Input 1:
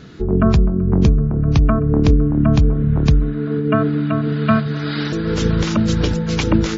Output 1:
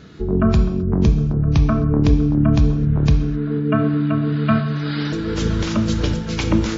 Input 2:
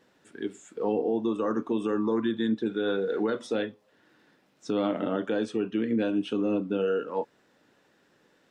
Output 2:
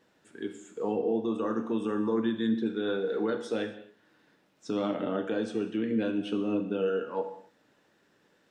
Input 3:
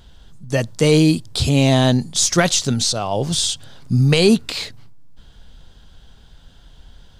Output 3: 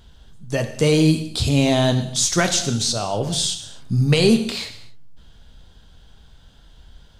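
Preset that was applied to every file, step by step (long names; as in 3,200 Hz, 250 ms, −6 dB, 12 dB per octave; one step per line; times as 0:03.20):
reverb whose tail is shaped and stops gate 290 ms falling, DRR 6.5 dB
level −3 dB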